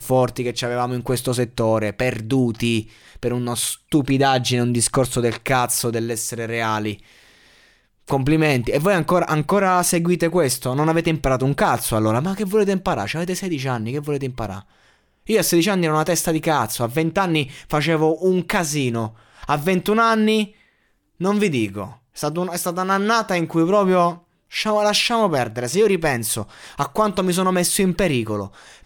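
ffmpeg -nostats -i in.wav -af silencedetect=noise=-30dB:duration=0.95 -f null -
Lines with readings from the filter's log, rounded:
silence_start: 6.95
silence_end: 8.08 | silence_duration: 1.13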